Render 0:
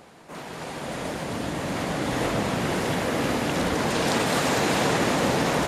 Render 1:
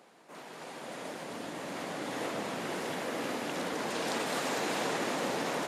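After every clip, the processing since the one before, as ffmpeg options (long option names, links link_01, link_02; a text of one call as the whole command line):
ffmpeg -i in.wav -af "highpass=240,volume=-9dB" out.wav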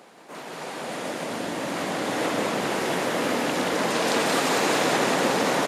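ffmpeg -i in.wav -af "aecho=1:1:178:0.596,volume=9dB" out.wav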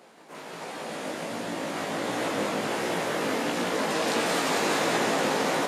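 ffmpeg -i in.wav -af "flanger=delay=17:depth=2.2:speed=1.4" out.wav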